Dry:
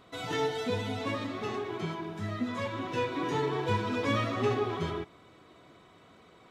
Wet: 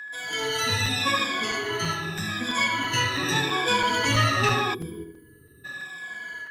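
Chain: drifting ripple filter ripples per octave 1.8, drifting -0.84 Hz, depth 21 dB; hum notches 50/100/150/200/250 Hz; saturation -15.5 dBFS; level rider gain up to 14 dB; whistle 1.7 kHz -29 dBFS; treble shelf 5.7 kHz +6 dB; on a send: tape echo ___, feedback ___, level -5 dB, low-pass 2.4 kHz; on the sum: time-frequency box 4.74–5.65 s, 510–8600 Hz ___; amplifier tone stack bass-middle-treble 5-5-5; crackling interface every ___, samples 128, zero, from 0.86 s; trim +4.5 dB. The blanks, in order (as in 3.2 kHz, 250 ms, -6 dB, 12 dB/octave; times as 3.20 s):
78 ms, 47%, -26 dB, 0.33 s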